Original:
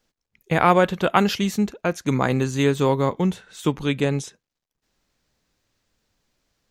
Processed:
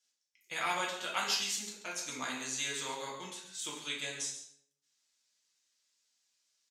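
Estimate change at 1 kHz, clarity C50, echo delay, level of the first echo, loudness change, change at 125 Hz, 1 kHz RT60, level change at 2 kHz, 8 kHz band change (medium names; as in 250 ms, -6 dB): -16.0 dB, 4.0 dB, 136 ms, -10.5 dB, -14.5 dB, -32.0 dB, 0.65 s, -9.5 dB, +1.0 dB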